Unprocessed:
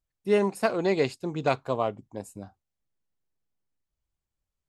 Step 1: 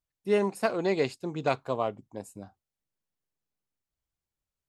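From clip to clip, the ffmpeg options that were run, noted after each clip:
ffmpeg -i in.wav -af "lowshelf=frequency=63:gain=-7.5,volume=-2dB" out.wav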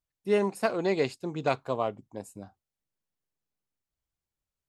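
ffmpeg -i in.wav -af anull out.wav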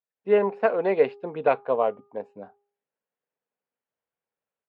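ffmpeg -i in.wav -af "highpass=300,equalizer=frequency=330:width_type=q:width=4:gain=-9,equalizer=frequency=470:width_type=q:width=4:gain=6,equalizer=frequency=1200:width_type=q:width=4:gain=-4,equalizer=frequency=2100:width_type=q:width=4:gain=-4,lowpass=frequency=2400:width=0.5412,lowpass=frequency=2400:width=1.3066,dynaudnorm=framelen=110:gausssize=3:maxgain=10.5dB,bandreject=frequency=406.2:width_type=h:width=4,bandreject=frequency=812.4:width_type=h:width=4,bandreject=frequency=1218.6:width_type=h:width=4,volume=-4dB" out.wav

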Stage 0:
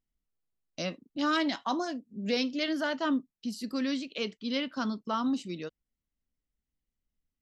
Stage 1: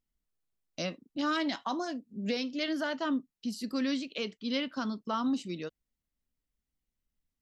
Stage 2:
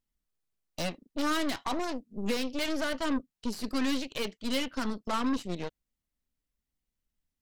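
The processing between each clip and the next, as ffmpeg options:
ffmpeg -i in.wav -af "alimiter=limit=-21.5dB:level=0:latency=1:release=316" out.wav
ffmpeg -i in.wav -af "aeval=exprs='0.0891*(cos(1*acos(clip(val(0)/0.0891,-1,1)))-cos(1*PI/2))+0.0158*(cos(8*acos(clip(val(0)/0.0891,-1,1)))-cos(8*PI/2))':channel_layout=same" out.wav

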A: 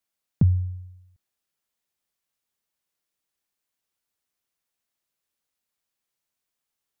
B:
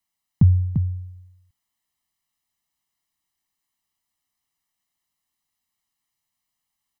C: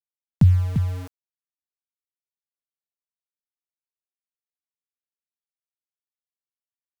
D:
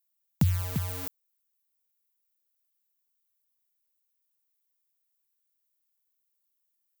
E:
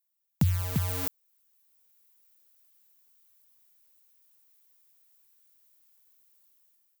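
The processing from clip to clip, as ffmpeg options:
ffmpeg -i in.wav -af "aecho=1:1:1:0.76,aecho=1:1:345:0.447" out.wav
ffmpeg -i in.wav -filter_complex "[0:a]acrossover=split=130[link_01][link_02];[link_02]acompressor=mode=upward:threshold=-27dB:ratio=2.5[link_03];[link_01][link_03]amix=inputs=2:normalize=0,aeval=exprs='val(0)*gte(abs(val(0)),0.0251)':channel_layout=same" out.wav
ffmpeg -i in.wav -af "aemphasis=mode=production:type=bsi" out.wav
ffmpeg -i in.wav -af "dynaudnorm=framelen=290:gausssize=5:maxgain=15dB,volume=-1.5dB" out.wav

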